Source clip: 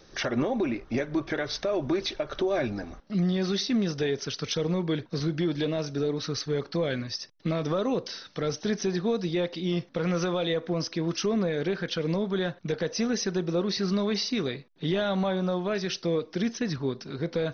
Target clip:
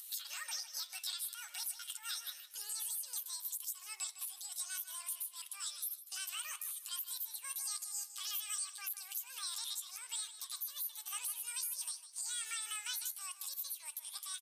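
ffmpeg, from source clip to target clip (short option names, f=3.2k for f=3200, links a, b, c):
-filter_complex "[0:a]highpass=1k,aderivative,acompressor=threshold=-46dB:ratio=2,alimiter=level_in=17.5dB:limit=-24dB:level=0:latency=1:release=320,volume=-17.5dB,acompressor=mode=upward:threshold=-59dB:ratio=2.5,atempo=0.52,asplit=2[a][b];[b]adelay=360,lowpass=f=4.6k:p=1,volume=-11.5dB,asplit=2[c][d];[d]adelay=360,lowpass=f=4.6k:p=1,volume=0.24,asplit=2[e][f];[f]adelay=360,lowpass=f=4.6k:p=1,volume=0.24[g];[a][c][e][g]amix=inputs=4:normalize=0,asetrate=103194,aresample=44100,volume=13dB"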